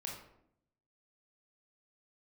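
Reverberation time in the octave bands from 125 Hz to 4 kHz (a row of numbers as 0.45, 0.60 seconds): 1.0, 1.0, 0.80, 0.65, 0.55, 0.45 seconds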